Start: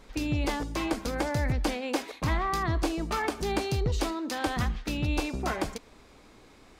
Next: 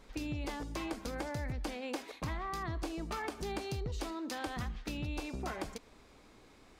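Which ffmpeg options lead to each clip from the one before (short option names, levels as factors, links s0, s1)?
-af "acompressor=threshold=0.0282:ratio=3,volume=0.562"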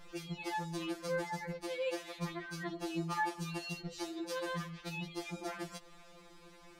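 -af "alimiter=level_in=2.24:limit=0.0631:level=0:latency=1:release=142,volume=0.447,afftfilt=real='re*2.83*eq(mod(b,8),0)':imag='im*2.83*eq(mod(b,8),0)':win_size=2048:overlap=0.75,volume=1.88"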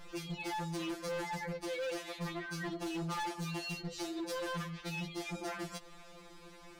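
-af "asoftclip=type=hard:threshold=0.0126,volume=1.41"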